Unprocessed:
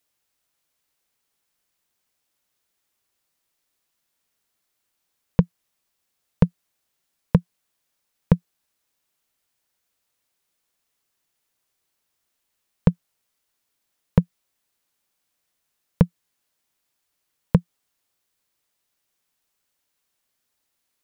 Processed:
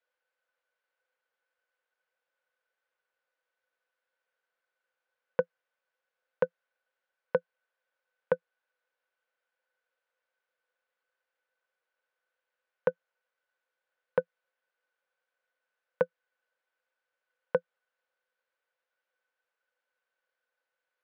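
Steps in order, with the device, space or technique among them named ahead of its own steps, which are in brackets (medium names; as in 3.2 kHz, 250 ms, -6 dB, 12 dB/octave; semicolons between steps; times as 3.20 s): tin-can telephone (band-pass 670–2200 Hz; small resonant body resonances 510/1500 Hz, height 17 dB, ringing for 60 ms); trim -3.5 dB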